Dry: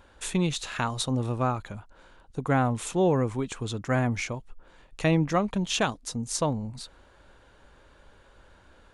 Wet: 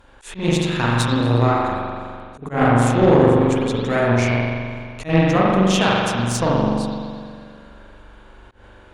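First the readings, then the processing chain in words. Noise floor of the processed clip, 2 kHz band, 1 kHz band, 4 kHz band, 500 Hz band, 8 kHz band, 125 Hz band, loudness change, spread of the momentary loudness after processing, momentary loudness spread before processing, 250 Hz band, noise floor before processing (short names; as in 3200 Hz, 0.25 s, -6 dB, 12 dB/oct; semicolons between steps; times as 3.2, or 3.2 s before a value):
-46 dBFS, +10.0 dB, +10.0 dB, +7.5 dB, +11.0 dB, +3.0 dB, +9.5 dB, +9.5 dB, 16 LU, 13 LU, +10.0 dB, -57 dBFS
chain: spring tank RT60 2.1 s, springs 42 ms, chirp 80 ms, DRR -6 dB; auto swell 0.139 s; added harmonics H 4 -16 dB, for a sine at -6 dBFS; gain +3 dB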